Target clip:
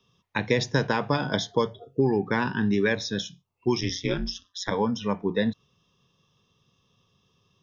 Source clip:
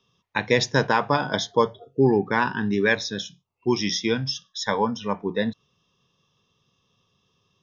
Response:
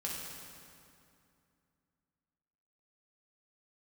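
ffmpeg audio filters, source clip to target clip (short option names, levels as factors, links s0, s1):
-filter_complex "[0:a]acrossover=split=630|1500[s0][s1][s2];[s0]acompressor=threshold=0.0794:ratio=4[s3];[s1]acompressor=threshold=0.0178:ratio=4[s4];[s2]acompressor=threshold=0.0398:ratio=4[s5];[s3][s4][s5]amix=inputs=3:normalize=0,asplit=3[s6][s7][s8];[s6]afade=t=out:st=3.8:d=0.02[s9];[s7]aeval=exprs='val(0)*sin(2*PI*92*n/s)':c=same,afade=t=in:st=3.8:d=0.02,afade=t=out:st=4.7:d=0.02[s10];[s8]afade=t=in:st=4.7:d=0.02[s11];[s9][s10][s11]amix=inputs=3:normalize=0,lowshelf=f=240:g=4"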